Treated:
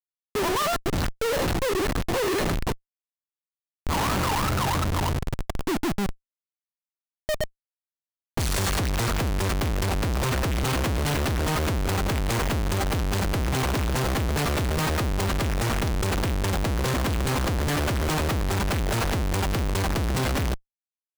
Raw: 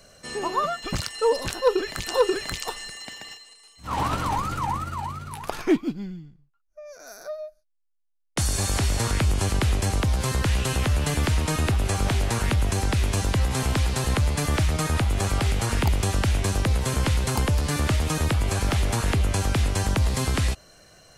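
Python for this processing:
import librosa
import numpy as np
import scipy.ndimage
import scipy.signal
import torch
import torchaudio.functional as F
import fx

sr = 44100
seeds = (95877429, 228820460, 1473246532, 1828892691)

y = fx.env_lowpass(x, sr, base_hz=360.0, full_db=-20.0)
y = fx.schmitt(y, sr, flips_db=-31.0)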